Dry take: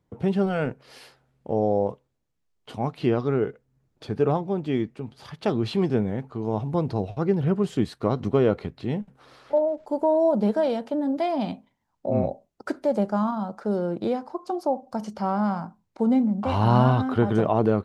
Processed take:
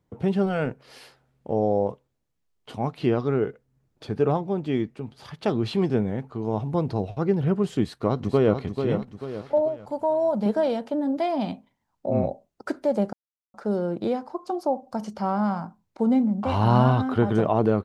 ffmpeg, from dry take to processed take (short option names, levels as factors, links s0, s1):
-filter_complex "[0:a]asplit=2[s0][s1];[s1]afade=t=in:st=7.83:d=0.01,afade=t=out:st=8.6:d=0.01,aecho=0:1:440|880|1320|1760|2200:0.446684|0.201008|0.0904534|0.040704|0.0183168[s2];[s0][s2]amix=inputs=2:normalize=0,asettb=1/sr,asplit=3[s3][s4][s5];[s3]atrim=end=9.684[s6];[s4]atrim=start=9.68:end=10.46,asetpts=PTS-STARTPTS,afade=t=in:d=0.004:c=qsin,afade=t=out:st=0.776:d=0.004:c=qsin,equalizer=f=360:t=o:w=0.93:g=-9[s7];[s5]atrim=start=10.456[s8];[s6][s7]acrossfade=d=0.004:c1=hsin:c2=qsin[s9];[s9][s8]acrossfade=d=0.004:c1=qsin:c2=hsin,asplit=3[s10][s11][s12];[s10]atrim=end=13.13,asetpts=PTS-STARTPTS,afade=t=out:st=13.126:d=0.004:c=hsin[s13];[s11]atrim=start=13.13:end=13.54,asetpts=PTS-STARTPTS,volume=0[s14];[s12]atrim=start=13.54,asetpts=PTS-STARTPTS,afade=t=in:d=0.004:c=hsin[s15];[s13][s14][s15]concat=n=3:v=0:a=1"